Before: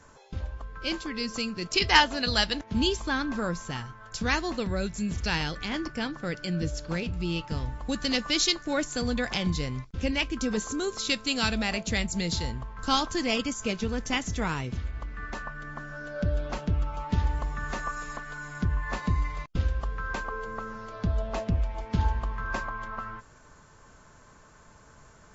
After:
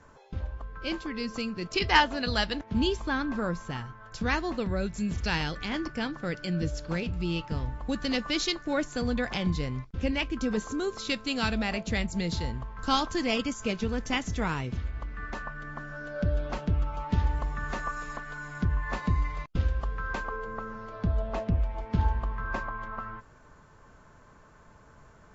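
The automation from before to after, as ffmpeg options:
-af "asetnsamples=n=441:p=0,asendcmd='4.93 lowpass f 4800;7.48 lowpass f 2600;12.54 lowpass f 4300;20.36 lowpass f 2200',lowpass=f=2.4k:p=1"

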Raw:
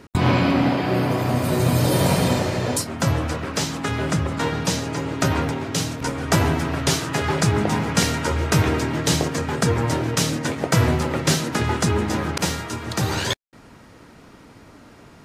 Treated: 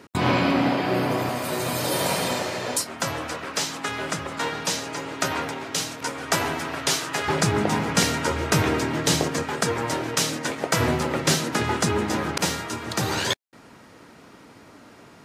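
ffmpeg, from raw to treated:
-af "asetnsamples=n=441:p=0,asendcmd='1.29 highpass f 670;7.28 highpass f 180;9.43 highpass f 440;10.8 highpass f 200',highpass=f=250:p=1"

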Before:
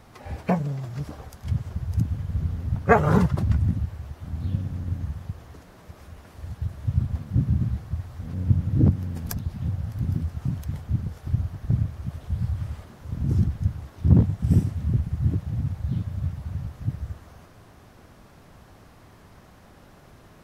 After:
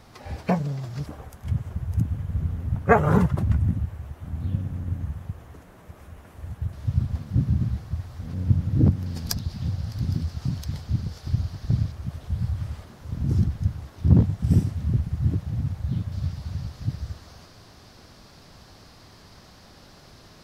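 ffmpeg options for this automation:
-af "asetnsamples=n=441:p=0,asendcmd='1.06 equalizer g -6;6.73 equalizer g 4.5;9.06 equalizer g 14.5;11.92 equalizer g 4.5;16.12 equalizer g 14',equalizer=f=4.7k:t=o:w=0.91:g=5.5"

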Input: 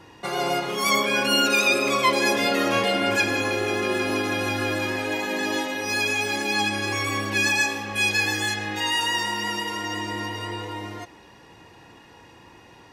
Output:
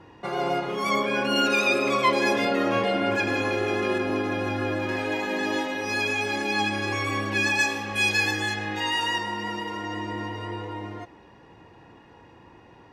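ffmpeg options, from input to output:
-af "asetnsamples=n=441:p=0,asendcmd='1.36 lowpass f 2600;2.45 lowpass f 1500;3.27 lowpass f 2500;3.98 lowpass f 1300;4.89 lowpass f 2900;7.59 lowpass f 6700;8.31 lowpass f 2900;9.18 lowpass f 1300',lowpass=f=1.5k:p=1"

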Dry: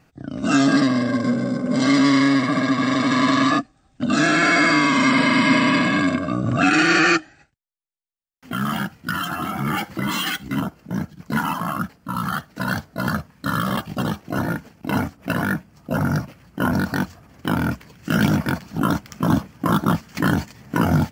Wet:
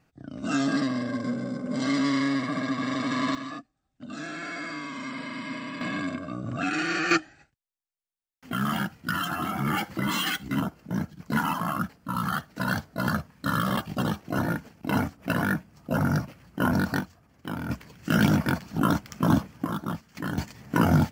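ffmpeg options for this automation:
-af "asetnsamples=n=441:p=0,asendcmd='3.35 volume volume -19dB;5.81 volume volume -11.5dB;7.11 volume volume -3.5dB;17 volume volume -12dB;17.7 volume volume -3dB;19.65 volume volume -12.5dB;20.38 volume volume -2.5dB',volume=-9dB"

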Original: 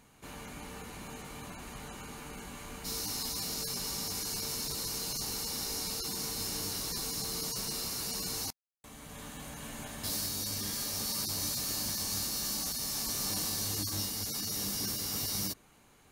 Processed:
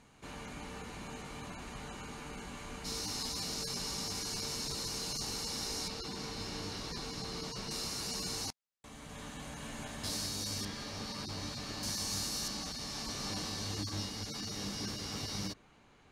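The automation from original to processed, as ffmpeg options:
-af "asetnsamples=n=441:p=0,asendcmd='5.88 lowpass f 3900;7.71 lowpass f 7500;10.65 lowpass f 3400;11.83 lowpass f 7900;12.48 lowpass f 4500',lowpass=7.3k"

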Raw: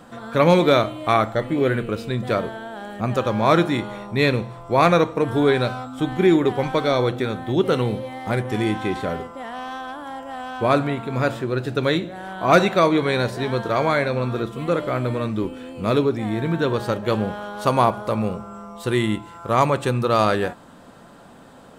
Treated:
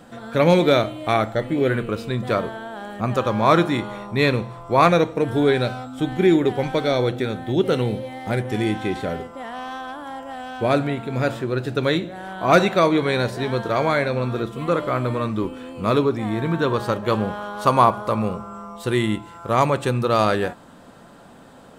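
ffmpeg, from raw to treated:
-af "asetnsamples=n=441:p=0,asendcmd='1.7 equalizer g 3;4.89 equalizer g -7.5;9.33 equalizer g -0.5;10.33 equalizer g -7.5;11.28 equalizer g -1;14.61 equalizer g 5.5;18.76 equalizer g -1',equalizer=f=1.1k:t=o:w=0.44:g=-6"

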